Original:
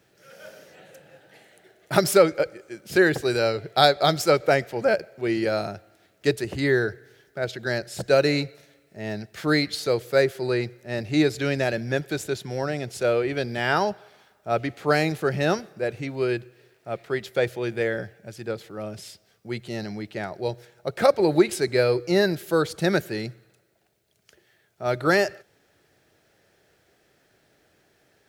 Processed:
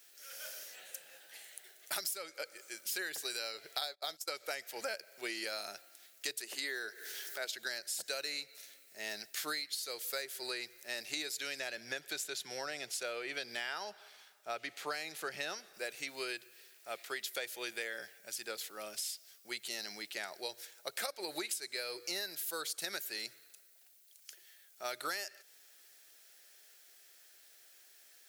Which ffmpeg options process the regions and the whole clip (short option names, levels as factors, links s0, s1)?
-filter_complex "[0:a]asettb=1/sr,asplit=3[s0][s1][s2];[s0]atrim=end=3.814[s3];[s1]atrim=start=3.81:end=4.3,asetpts=PTS-STARTPTS,afade=t=in:d=0.004:c=qsin,afade=t=out:st=0.486:d=0.004:c=qsin,agate=range=0.0631:threshold=0.0447:ratio=16:release=100:detection=peak,equalizer=f=580:t=o:w=1.9:g=4.5[s4];[s2]atrim=start=4.296[s5];[s3][s4]acrossfade=d=0.004:c1=hsin:c2=qsin[s6];[s6][s5]acrossfade=d=0.004:c1=qsin:c2=hsin,asettb=1/sr,asplit=3[s7][s8][s9];[s7]atrim=end=6.414[s10];[s8]atrim=start=6.41:end=7.54,asetpts=PTS-STARTPTS,afade=t=in:d=0.004:c=qsin,afade=t=out:st=1.126:d=0.004:c=qsin,highpass=f=210:w=0.5412,highpass=f=210:w=1.3066,acompressor=mode=upward:threshold=0.0282:ratio=2.5:attack=3.2:release=140:knee=2.83:detection=peak[s11];[s9]atrim=start=7.536[s12];[s10][s11]acrossfade=d=0.004:c1=hsin:c2=qsin[s13];[s13][s12]acrossfade=d=0.004:c1=qsin:c2=hsin,asettb=1/sr,asplit=3[s14][s15][s16];[s14]atrim=end=11.594[s17];[s15]atrim=start=11.59:end=15.74,asetpts=PTS-STARTPTS,afade=t=in:d=0.004:c=qsin,afade=t=out:st=4.146:d=0.004:c=qsin,lowpass=f=4000:p=1,equalizer=f=98:t=o:w=0.96:g=6[s18];[s16]atrim=start=15.736[s19];[s17][s18]acrossfade=d=0.004:c1=hsin:c2=qsin[s20];[s20][s19]acrossfade=d=0.004:c1=qsin:c2=hsin,highpass=190,aderivative,acompressor=threshold=0.00562:ratio=12,volume=2.99"